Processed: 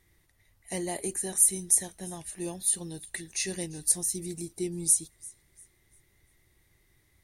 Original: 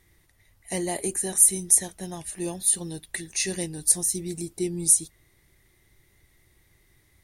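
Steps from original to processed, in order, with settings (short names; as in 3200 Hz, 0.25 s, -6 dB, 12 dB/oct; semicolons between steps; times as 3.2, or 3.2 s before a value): thin delay 0.345 s, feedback 32%, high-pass 2900 Hz, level -21.5 dB; gain -4.5 dB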